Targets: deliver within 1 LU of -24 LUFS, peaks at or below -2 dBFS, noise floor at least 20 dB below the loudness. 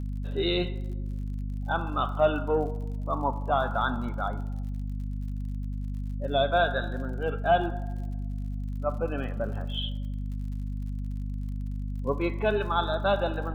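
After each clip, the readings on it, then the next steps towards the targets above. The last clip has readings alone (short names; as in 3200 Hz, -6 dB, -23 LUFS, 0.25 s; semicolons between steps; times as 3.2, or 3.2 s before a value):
ticks 54/s; hum 50 Hz; harmonics up to 250 Hz; hum level -30 dBFS; loudness -30.0 LUFS; peak -10.5 dBFS; loudness target -24.0 LUFS
-> de-click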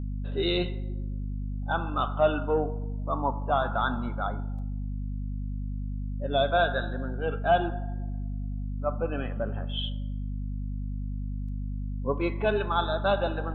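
ticks 0.30/s; hum 50 Hz; harmonics up to 250 Hz; hum level -30 dBFS
-> notches 50/100/150/200/250 Hz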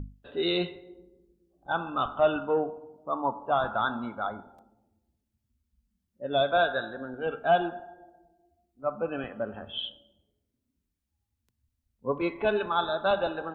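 hum none; loudness -29.5 LUFS; peak -11.5 dBFS; loudness target -24.0 LUFS
-> gain +5.5 dB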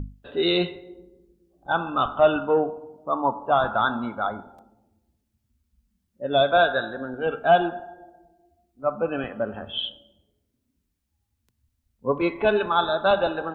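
loudness -24.0 LUFS; peak -6.0 dBFS; noise floor -76 dBFS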